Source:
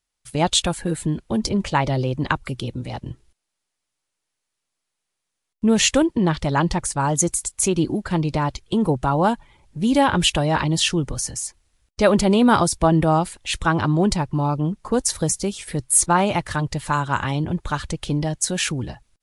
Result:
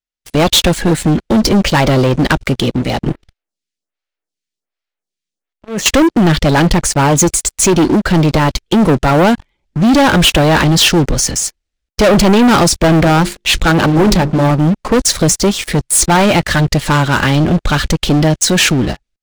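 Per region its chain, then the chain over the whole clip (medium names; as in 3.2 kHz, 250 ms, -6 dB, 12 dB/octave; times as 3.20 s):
3.07–5.86 s: compressor with a negative ratio -28 dBFS + lamp-driven phase shifter 1.3 Hz
13.00–14.51 s: hum notches 50/100/150/200/250/300/350/400/450 Hz + loudspeaker Doppler distortion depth 0.47 ms
whole clip: fifteen-band graphic EQ 100 Hz -12 dB, 1 kHz -8 dB, 10 kHz -12 dB; waveshaping leveller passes 5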